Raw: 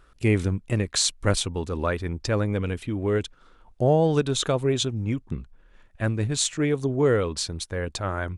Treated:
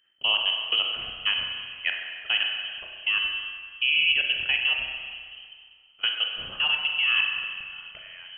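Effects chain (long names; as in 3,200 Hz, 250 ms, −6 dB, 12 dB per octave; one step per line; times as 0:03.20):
voice inversion scrambler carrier 3,100 Hz
output level in coarse steps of 23 dB
spring reverb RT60 1.9 s, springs 31/45 ms, chirp 40 ms, DRR 1.5 dB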